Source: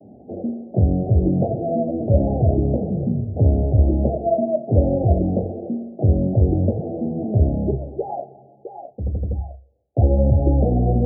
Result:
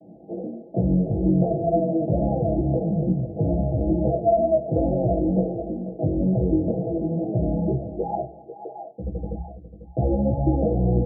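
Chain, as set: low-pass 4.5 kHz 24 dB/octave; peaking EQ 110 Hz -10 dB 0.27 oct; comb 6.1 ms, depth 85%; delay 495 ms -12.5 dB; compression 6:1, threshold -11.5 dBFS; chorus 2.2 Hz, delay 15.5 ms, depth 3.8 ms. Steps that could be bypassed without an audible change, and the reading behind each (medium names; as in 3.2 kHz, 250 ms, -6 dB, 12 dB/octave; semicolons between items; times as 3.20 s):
low-pass 4.5 kHz: input has nothing above 760 Hz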